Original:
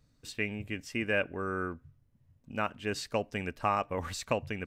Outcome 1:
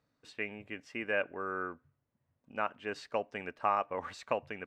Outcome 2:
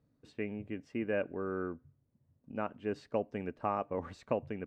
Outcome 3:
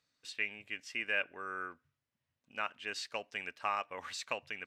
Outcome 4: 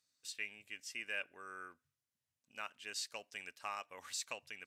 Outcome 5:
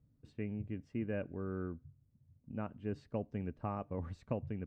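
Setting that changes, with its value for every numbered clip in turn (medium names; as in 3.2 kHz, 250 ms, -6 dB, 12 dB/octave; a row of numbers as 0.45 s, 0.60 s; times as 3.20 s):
band-pass filter, frequency: 960 Hz, 350 Hz, 2.9 kHz, 7.6 kHz, 130 Hz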